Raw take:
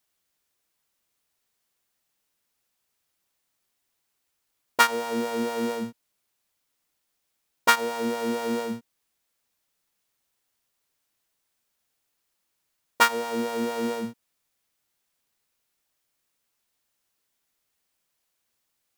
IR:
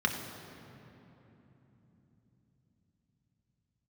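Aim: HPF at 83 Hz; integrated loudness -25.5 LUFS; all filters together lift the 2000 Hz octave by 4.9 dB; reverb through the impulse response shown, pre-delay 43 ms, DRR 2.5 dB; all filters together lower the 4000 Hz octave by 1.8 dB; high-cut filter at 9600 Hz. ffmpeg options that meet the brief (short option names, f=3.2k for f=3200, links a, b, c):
-filter_complex "[0:a]highpass=83,lowpass=9.6k,equalizer=f=2k:t=o:g=7.5,equalizer=f=4k:t=o:g=-6,asplit=2[a][b];[1:a]atrim=start_sample=2205,adelay=43[c];[b][c]afir=irnorm=-1:irlink=0,volume=-12dB[d];[a][d]amix=inputs=2:normalize=0,volume=-2.5dB"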